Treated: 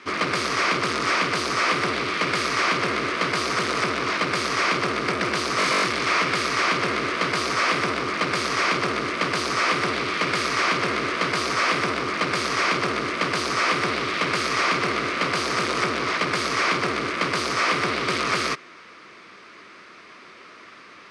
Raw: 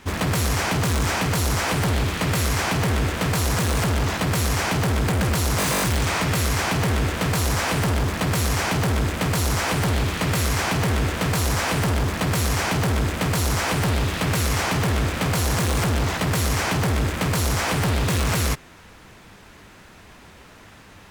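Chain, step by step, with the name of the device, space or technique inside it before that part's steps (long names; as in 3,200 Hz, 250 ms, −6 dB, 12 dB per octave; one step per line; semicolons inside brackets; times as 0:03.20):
full-range speaker at full volume (highs frequency-modulated by the lows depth 0.42 ms; loudspeaker in its box 290–7,900 Hz, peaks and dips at 360 Hz +5 dB, 830 Hz −9 dB, 1,200 Hz +10 dB, 2,200 Hz +7 dB, 4,700 Hz +5 dB, 7,300 Hz −9 dB)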